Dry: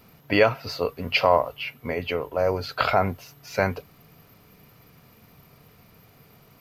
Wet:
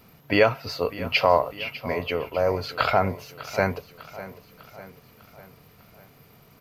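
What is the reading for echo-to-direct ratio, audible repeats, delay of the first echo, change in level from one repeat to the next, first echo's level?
-14.5 dB, 4, 600 ms, -5.5 dB, -16.0 dB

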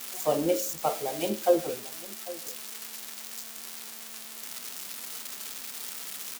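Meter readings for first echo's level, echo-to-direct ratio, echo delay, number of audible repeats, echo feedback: -18.0 dB, -18.0 dB, 797 ms, 1, no regular repeats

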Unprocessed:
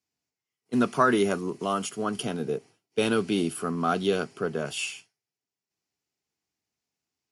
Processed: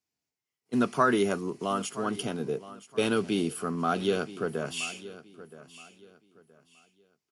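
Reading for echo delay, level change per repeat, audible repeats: 972 ms, -11.0 dB, 2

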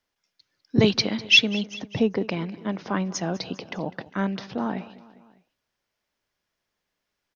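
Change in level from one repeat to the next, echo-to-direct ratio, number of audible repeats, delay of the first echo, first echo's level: -4.5 dB, -17.5 dB, 3, 201 ms, -19.0 dB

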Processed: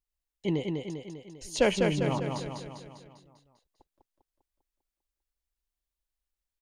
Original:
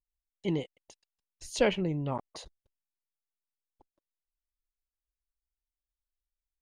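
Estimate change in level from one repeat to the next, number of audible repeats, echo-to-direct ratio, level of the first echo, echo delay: -5.0 dB, 6, -2.5 dB, -4.0 dB, 199 ms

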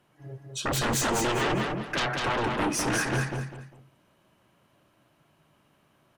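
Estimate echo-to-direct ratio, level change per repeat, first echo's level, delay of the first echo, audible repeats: -3.0 dB, -10.5 dB, -3.5 dB, 200 ms, 3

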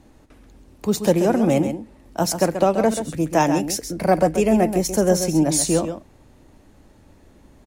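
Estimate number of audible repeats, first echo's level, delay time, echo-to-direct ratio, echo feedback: 1, -9.0 dB, 133 ms, -9.0 dB, no regular repeats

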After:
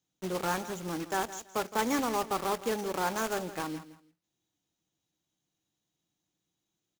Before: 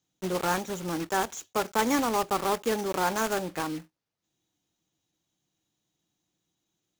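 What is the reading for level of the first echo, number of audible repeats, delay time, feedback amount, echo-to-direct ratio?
-14.5 dB, 2, 165 ms, 23%, -14.5 dB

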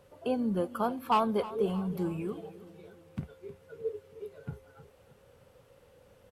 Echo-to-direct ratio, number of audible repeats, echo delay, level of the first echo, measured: -15.5 dB, 3, 313 ms, -17.0 dB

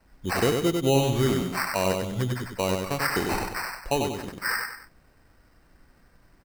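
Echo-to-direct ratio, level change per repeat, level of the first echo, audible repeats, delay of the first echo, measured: -3.5 dB, -8.0 dB, -4.0 dB, 3, 96 ms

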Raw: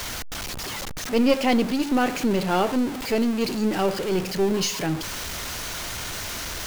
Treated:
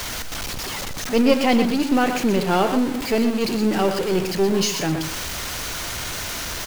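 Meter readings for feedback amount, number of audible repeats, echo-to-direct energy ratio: no regular repeats, 1, -8.5 dB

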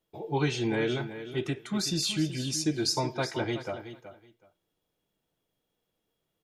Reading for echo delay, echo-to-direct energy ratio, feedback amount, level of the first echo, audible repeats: 374 ms, -12.0 dB, 18%, -12.0 dB, 2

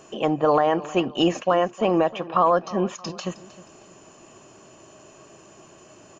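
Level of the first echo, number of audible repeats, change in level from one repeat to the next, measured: -18.0 dB, 2, -8.0 dB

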